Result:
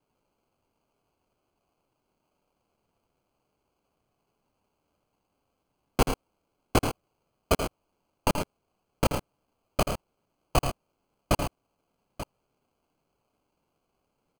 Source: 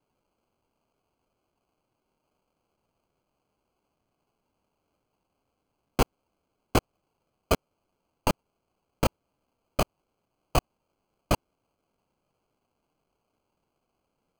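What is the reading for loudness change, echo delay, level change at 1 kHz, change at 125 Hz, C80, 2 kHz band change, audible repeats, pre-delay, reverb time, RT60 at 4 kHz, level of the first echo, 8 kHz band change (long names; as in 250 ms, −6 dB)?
0.0 dB, 81 ms, +1.0 dB, +1.0 dB, no reverb audible, +1.0 dB, 2, no reverb audible, no reverb audible, no reverb audible, −9.5 dB, +2.0 dB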